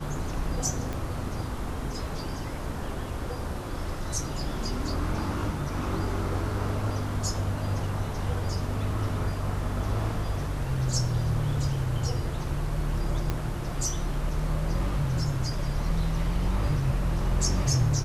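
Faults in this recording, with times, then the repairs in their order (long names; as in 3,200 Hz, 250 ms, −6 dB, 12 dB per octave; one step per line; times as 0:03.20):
0:00.93: click −19 dBFS
0:13.30: click −14 dBFS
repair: click removal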